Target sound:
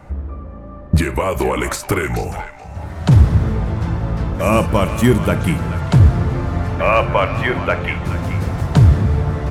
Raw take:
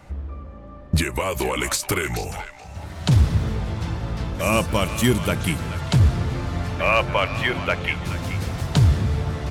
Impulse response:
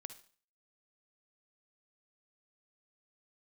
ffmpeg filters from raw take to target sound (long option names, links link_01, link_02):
-filter_complex "[0:a]asplit=2[link_01][link_02];[1:a]atrim=start_sample=2205,asetrate=57330,aresample=44100,lowpass=2100[link_03];[link_02][link_03]afir=irnorm=-1:irlink=0,volume=11dB[link_04];[link_01][link_04]amix=inputs=2:normalize=0,volume=-1.5dB"